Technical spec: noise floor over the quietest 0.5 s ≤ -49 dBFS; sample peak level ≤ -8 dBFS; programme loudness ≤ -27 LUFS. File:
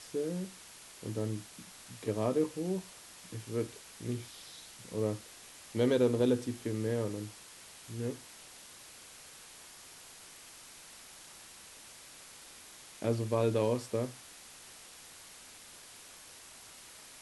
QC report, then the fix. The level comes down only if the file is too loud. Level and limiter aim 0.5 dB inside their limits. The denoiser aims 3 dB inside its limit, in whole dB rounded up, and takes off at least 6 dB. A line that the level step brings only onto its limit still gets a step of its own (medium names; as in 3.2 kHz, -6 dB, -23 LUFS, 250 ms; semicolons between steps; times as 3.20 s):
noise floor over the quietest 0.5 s -53 dBFS: pass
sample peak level -16.0 dBFS: pass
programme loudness -34.5 LUFS: pass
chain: none needed